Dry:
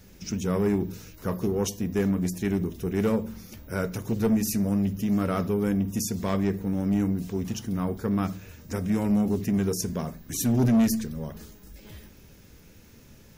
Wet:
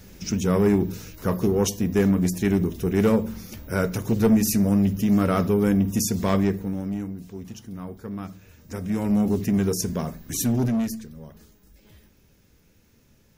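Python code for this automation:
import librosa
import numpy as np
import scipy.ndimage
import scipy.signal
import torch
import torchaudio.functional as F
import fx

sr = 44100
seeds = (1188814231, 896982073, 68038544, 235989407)

y = fx.gain(x, sr, db=fx.line((6.38, 5.0), (7.1, -7.5), (8.31, -7.5), (9.25, 3.0), (10.38, 3.0), (11.01, -7.5)))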